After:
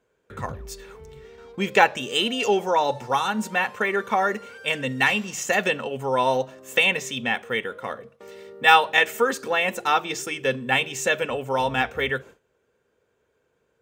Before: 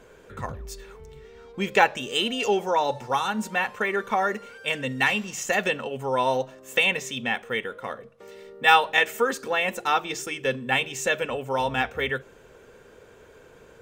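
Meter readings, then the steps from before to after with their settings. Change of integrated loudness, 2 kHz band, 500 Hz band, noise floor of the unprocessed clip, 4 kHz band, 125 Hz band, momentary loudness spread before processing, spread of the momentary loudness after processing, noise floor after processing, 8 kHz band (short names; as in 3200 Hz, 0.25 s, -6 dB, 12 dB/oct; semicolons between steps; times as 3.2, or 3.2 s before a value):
+2.0 dB, +2.0 dB, +2.0 dB, -52 dBFS, +2.0 dB, +2.0 dB, 13 LU, 13 LU, -71 dBFS, +2.0 dB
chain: gate with hold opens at -39 dBFS; HPF 55 Hz; gain +2 dB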